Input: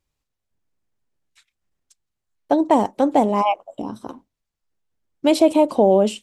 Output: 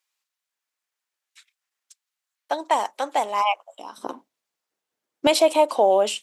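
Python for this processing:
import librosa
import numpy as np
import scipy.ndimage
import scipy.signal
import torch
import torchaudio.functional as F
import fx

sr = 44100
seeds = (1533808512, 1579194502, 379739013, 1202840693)

y = fx.highpass(x, sr, hz=fx.steps((0.0, 1200.0), (3.98, 370.0), (5.27, 780.0)), slope=12)
y = y * 10.0 ** (4.5 / 20.0)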